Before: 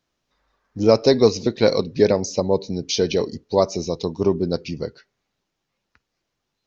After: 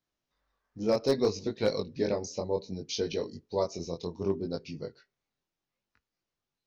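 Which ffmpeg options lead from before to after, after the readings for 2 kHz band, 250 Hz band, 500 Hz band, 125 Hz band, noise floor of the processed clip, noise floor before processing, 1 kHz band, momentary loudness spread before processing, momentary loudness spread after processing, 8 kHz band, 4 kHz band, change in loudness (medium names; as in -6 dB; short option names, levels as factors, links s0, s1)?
-11.0 dB, -11.5 dB, -11.5 dB, -12.0 dB, under -85 dBFS, -79 dBFS, -11.5 dB, 10 LU, 10 LU, no reading, -11.5 dB, -11.5 dB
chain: -af "flanger=delay=19:depth=4.9:speed=0.65,volume=2.66,asoftclip=hard,volume=0.376,volume=0.376"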